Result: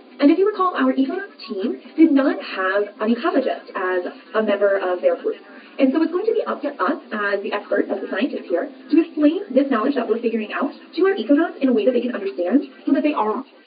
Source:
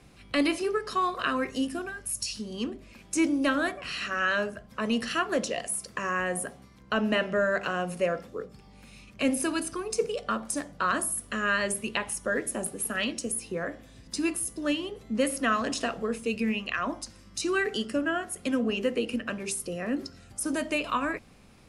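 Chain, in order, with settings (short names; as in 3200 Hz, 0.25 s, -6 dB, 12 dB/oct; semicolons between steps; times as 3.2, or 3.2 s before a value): tape stop at the end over 0.82 s; tilt shelf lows +8.5 dB; plain phase-vocoder stretch 0.63×; in parallel at +1 dB: compressor, threshold -32 dBFS, peak gain reduction 15 dB; on the sum: requantised 10-bit, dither triangular; brick-wall FIR band-pass 230–4800 Hz; on a send: thin delay 0.839 s, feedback 52%, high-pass 2300 Hz, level -11.5 dB; on the sum: gain +7 dB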